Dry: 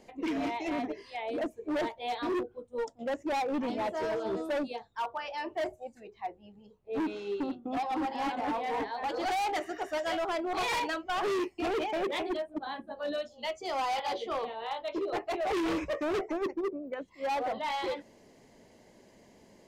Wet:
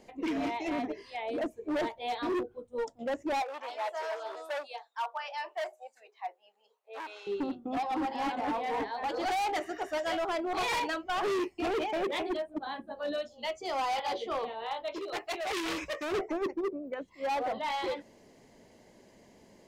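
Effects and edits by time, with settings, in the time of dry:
3.42–7.27 HPF 620 Hz 24 dB/oct
14.94–16.12 tilt shelf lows -7 dB, about 1400 Hz

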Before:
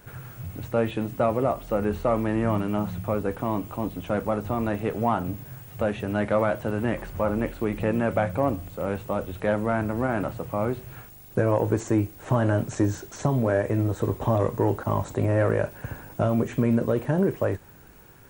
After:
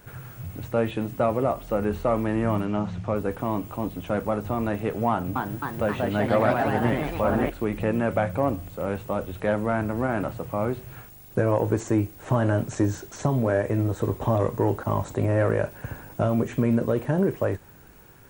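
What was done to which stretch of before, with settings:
2.65–3.16 LPF 6800 Hz 24 dB/oct
5.09–7.5 echoes that change speed 0.265 s, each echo +2 st, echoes 3

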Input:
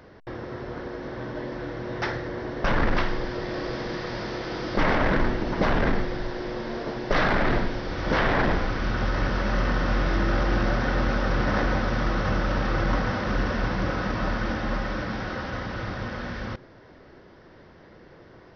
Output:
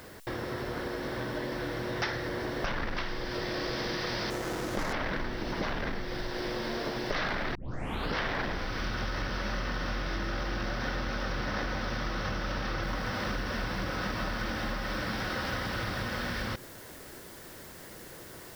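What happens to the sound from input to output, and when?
4.3–4.93 median filter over 15 samples
7.55 tape start 0.61 s
12.83 noise floor step -67 dB -61 dB
whole clip: compressor, threshold -31 dBFS; high shelf 2200 Hz +10.5 dB

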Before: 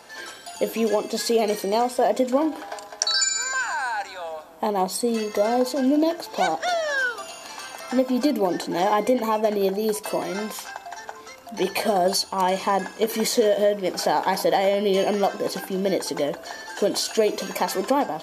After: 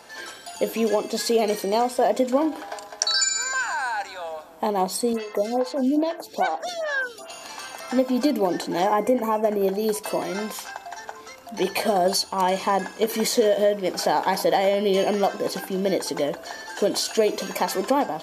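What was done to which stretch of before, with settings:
5.13–7.3 photocell phaser 2.4 Hz
8.86–9.68 bell 3900 Hz -14.5 dB 0.85 oct

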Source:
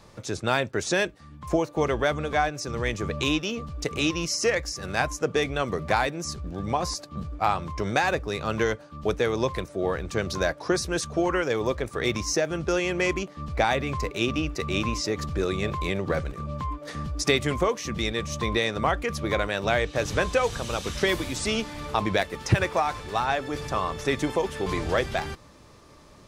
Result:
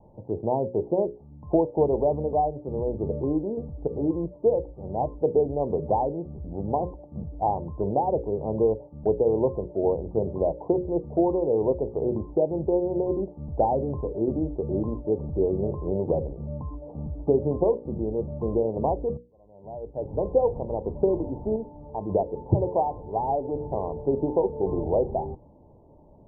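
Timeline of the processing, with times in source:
19.17–20.36 fade in quadratic
21.56–22.09 gain -6 dB
whole clip: steep low-pass 940 Hz 96 dB/oct; notches 60/120/180/240/300/360/420/480/540 Hz; dynamic EQ 430 Hz, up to +5 dB, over -39 dBFS, Q 1.5

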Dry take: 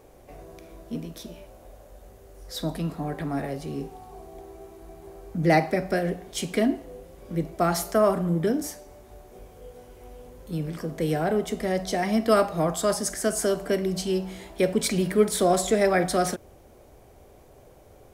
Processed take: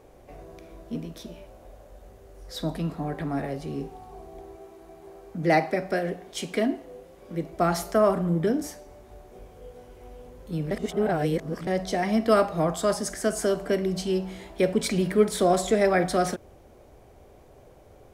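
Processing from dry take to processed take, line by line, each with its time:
4.55–7.53 low shelf 140 Hz -11.5 dB
10.71–11.67 reverse
whole clip: high shelf 6900 Hz -7.5 dB

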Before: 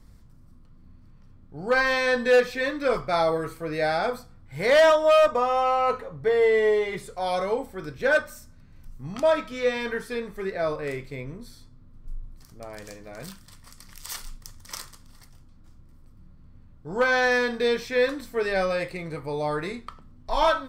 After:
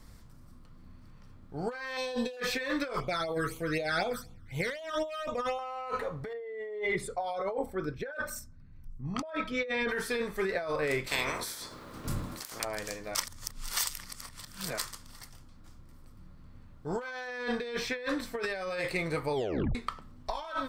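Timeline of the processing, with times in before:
1.97–2.37 band shelf 1600 Hz -15.5 dB 1.1 oct
3–5.59 phaser stages 12, 4 Hz, lowest notch 720–1700 Hz
6.33–9.89 formant sharpening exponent 1.5
11.06–12.63 spectral limiter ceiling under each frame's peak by 30 dB
13.15–14.78 reverse
17.27–18.42 high shelf 5700 Hz -8.5 dB
19.34 tape stop 0.41 s
whole clip: low shelf 410 Hz -7.5 dB; negative-ratio compressor -34 dBFS, ratio -1

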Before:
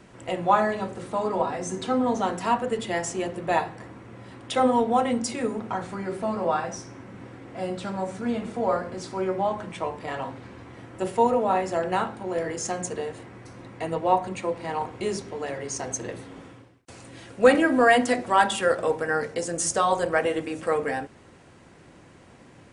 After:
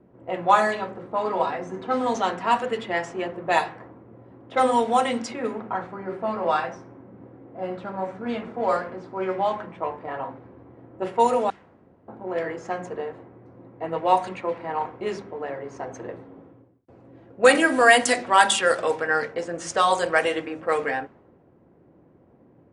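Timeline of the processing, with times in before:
11.5–12.08 room tone
whole clip: low-pass opened by the level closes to 420 Hz, open at -17 dBFS; tilt +2.5 dB/oct; notches 50/100/150/200/250 Hz; gain +3 dB

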